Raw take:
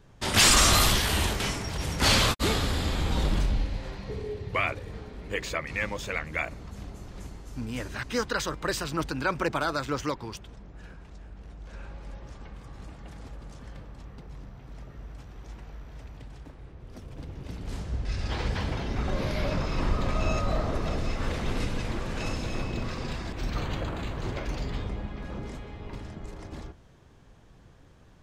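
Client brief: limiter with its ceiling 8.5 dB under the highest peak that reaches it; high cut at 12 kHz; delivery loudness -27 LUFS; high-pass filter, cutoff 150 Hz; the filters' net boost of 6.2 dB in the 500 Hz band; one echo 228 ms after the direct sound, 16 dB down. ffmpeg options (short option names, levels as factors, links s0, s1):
-af "highpass=150,lowpass=12000,equalizer=f=500:t=o:g=7.5,alimiter=limit=0.133:level=0:latency=1,aecho=1:1:228:0.158,volume=1.5"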